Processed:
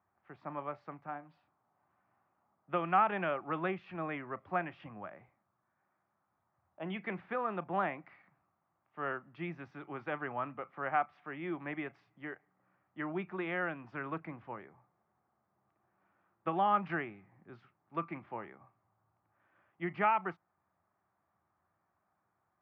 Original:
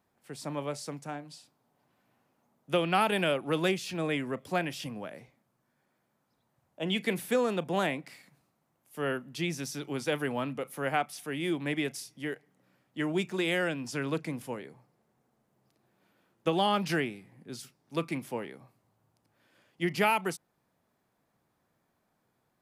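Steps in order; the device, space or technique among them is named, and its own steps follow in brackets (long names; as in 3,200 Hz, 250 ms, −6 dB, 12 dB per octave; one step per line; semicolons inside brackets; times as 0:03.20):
bass cabinet (loudspeaker in its box 70–2,100 Hz, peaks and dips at 86 Hz +7 dB, 140 Hz −7 dB, 250 Hz −10 dB, 470 Hz −9 dB, 780 Hz +4 dB, 1,200 Hz +8 dB)
level −4.5 dB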